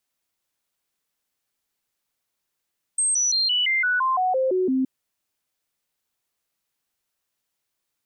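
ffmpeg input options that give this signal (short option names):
-f lavfi -i "aevalsrc='0.119*clip(min(mod(t,0.17),0.17-mod(t,0.17))/0.005,0,1)*sin(2*PI*8370*pow(2,-floor(t/0.17)/2)*mod(t,0.17))':d=1.87:s=44100"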